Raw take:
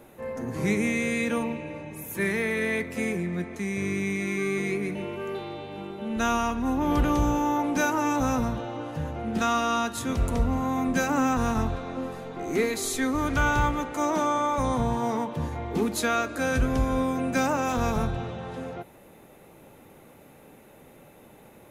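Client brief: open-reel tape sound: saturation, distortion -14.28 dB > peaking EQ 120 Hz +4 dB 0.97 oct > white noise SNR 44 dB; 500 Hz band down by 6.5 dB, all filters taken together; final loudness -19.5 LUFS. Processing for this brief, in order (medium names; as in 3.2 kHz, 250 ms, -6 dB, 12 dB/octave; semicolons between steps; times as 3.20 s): peaking EQ 500 Hz -8.5 dB; saturation -23 dBFS; peaking EQ 120 Hz +4 dB 0.97 oct; white noise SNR 44 dB; trim +11 dB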